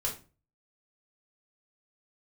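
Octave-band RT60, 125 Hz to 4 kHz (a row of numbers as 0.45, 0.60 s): 0.55, 0.40, 0.35, 0.30, 0.30, 0.25 s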